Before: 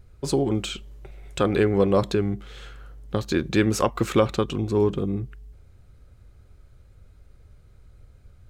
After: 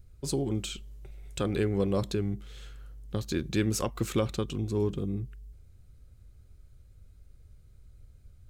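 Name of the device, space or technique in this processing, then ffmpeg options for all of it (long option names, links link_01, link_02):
smiley-face EQ: -af "lowshelf=frequency=120:gain=4,equalizer=frequency=1000:width_type=o:width=2.6:gain=-6,highshelf=frequency=5900:gain=7,volume=-6dB"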